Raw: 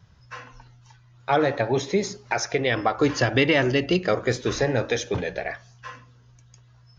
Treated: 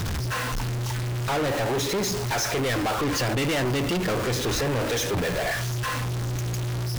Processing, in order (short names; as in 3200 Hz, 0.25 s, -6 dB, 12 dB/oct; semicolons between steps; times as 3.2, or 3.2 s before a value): zero-crossing step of -26.5 dBFS; low shelf 140 Hz +6 dB; soft clip -26 dBFS, distortion -5 dB; gain +3 dB